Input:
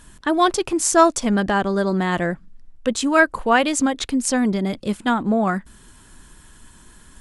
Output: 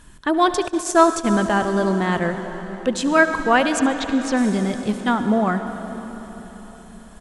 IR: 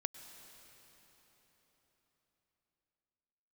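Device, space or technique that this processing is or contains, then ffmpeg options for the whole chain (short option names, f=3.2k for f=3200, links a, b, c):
swimming-pool hall: -filter_complex "[1:a]atrim=start_sample=2205[a];[0:a][a]afir=irnorm=-1:irlink=0,highshelf=f=5.4k:g=-5,asettb=1/sr,asplit=3[b][c][d];[b]atrim=end=0.684[e];[c]atrim=start=0.68:end=2.24,asetpts=PTS-STARTPTS,afade=t=in:d=0.004:c=qsin,afade=t=out:st=1.556:d=0.004:c=qsin,agate=range=-20dB:threshold=-23dB:ratio=16:detection=peak[f];[d]atrim=start=2.236[g];[e][f]acrossfade=d=0.004:c1=hsin:c2=qsin[h];[h][g]acrossfade=d=0.004:c1=qsin:c2=hsin,asettb=1/sr,asplit=3[i][j][k];[i]atrim=end=3.794[l];[j]atrim=start=3.79:end=4.37,asetpts=PTS-STARTPTS,afade=t=in:d=0.004:c=qsin,afade=t=out:st=0.576:d=0.004:c=qsin,lowpass=5.2k[m];[k]atrim=start=4.366[n];[l][m]acrossfade=d=0.004:c1=hsin:c2=qsin[o];[o][n]acrossfade=d=0.004:c1=qsin:c2=hsin,aecho=1:1:72|144|216|288|360:0.112|0.0628|0.0352|0.0197|0.011,volume=1.5dB"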